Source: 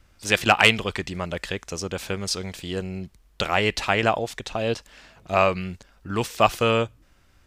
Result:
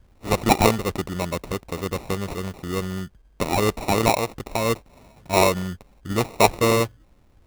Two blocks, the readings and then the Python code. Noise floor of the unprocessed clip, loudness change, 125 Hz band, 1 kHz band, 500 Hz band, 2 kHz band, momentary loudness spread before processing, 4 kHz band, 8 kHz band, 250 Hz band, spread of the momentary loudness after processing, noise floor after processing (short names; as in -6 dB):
-59 dBFS, +0.5 dB, +3.5 dB, +1.5 dB, +2.0 dB, -5.0 dB, 14 LU, -3.5 dB, +4.0 dB, +4.0 dB, 12 LU, -57 dBFS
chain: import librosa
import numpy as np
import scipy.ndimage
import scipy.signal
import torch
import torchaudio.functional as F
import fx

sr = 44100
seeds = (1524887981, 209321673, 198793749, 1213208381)

y = fx.peak_eq(x, sr, hz=4200.0, db=-12.0, octaves=1.6)
y = fx.sample_hold(y, sr, seeds[0], rate_hz=1600.0, jitter_pct=0)
y = y * 10.0 ** (3.0 / 20.0)